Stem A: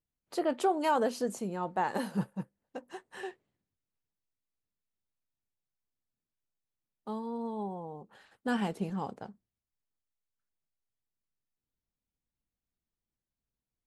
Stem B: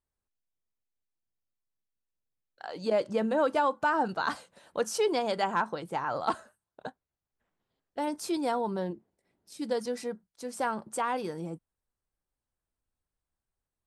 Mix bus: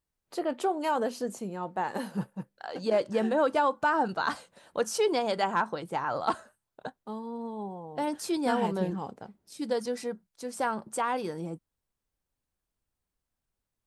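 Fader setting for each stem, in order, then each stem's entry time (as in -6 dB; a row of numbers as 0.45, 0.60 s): -0.5, +1.0 dB; 0.00, 0.00 s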